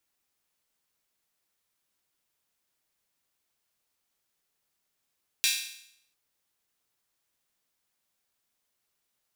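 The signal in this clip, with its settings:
open synth hi-hat length 0.70 s, high-pass 2,800 Hz, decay 0.71 s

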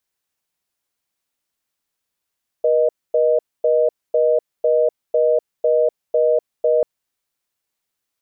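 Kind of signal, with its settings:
call progress tone reorder tone, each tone −15.5 dBFS 4.19 s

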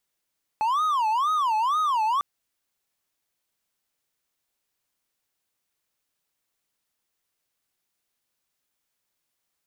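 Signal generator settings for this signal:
siren wail 859–1,260 Hz 2.1 per second triangle −18.5 dBFS 1.60 s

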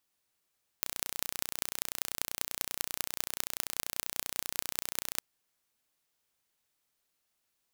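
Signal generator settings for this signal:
impulse train 30.3 per second, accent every 6, −2 dBFS 4.38 s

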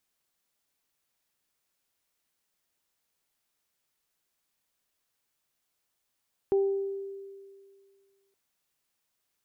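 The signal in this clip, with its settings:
harmonic partials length 1.82 s, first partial 393 Hz, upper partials −16.5 dB, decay 2.06 s, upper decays 0.75 s, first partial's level −20 dB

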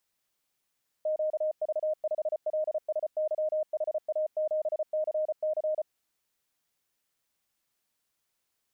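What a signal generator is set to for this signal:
Morse code "QV5LSYHA7CC" 34 words per minute 619 Hz −25.5 dBFS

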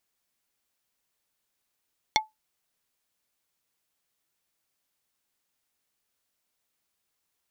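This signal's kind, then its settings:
struck wood plate, lowest mode 868 Hz, decay 0.17 s, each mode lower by 0 dB, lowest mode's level −17 dB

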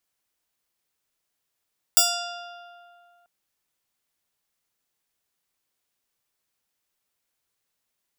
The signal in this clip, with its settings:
Karplus-Strong string F5, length 1.29 s, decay 2.38 s, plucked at 0.33, bright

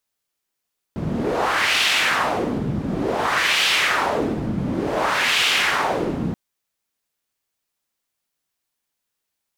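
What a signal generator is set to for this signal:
wind from filtered noise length 5.38 s, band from 180 Hz, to 2,900 Hz, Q 1.8, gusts 3, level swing 6 dB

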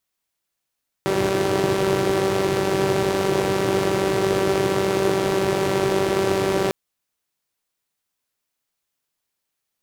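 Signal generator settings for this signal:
pulse-train model of a four-cylinder engine, steady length 5.65 s, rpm 5,800, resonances 140/350 Hz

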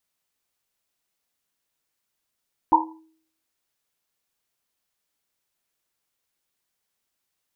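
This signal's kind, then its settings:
drum after Risset, pitch 320 Hz, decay 0.60 s, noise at 930 Hz, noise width 140 Hz, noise 70%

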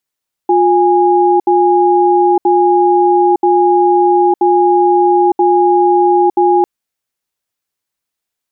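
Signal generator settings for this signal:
tone pair in a cadence 355 Hz, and 824 Hz, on 0.91 s, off 0.07 s, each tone −9.5 dBFS 6.15 s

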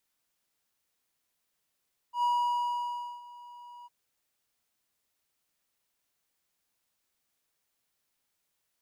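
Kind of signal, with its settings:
note with an ADSR envelope triangle 966 Hz, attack 101 ms, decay 977 ms, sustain −22 dB, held 1.73 s, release 26 ms −21.5 dBFS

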